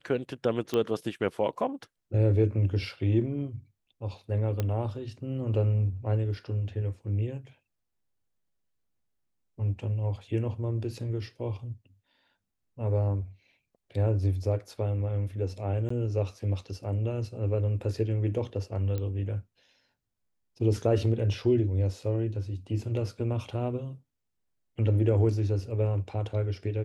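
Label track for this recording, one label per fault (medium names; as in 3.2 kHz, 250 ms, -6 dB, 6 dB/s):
0.740000	0.740000	pop -16 dBFS
4.600000	4.600000	pop -16 dBFS
15.890000	15.900000	dropout 14 ms
18.980000	18.980000	pop -21 dBFS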